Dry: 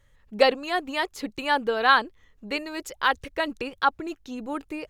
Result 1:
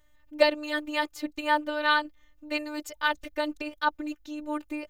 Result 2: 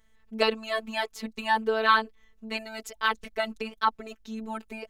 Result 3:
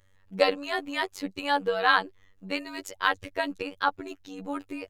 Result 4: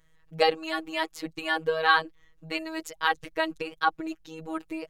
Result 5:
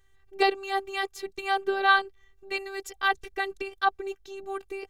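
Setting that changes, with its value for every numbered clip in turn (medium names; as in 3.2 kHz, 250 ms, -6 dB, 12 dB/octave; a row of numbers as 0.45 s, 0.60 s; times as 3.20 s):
robot voice, frequency: 300 Hz, 220 Hz, 95 Hz, 160 Hz, 390 Hz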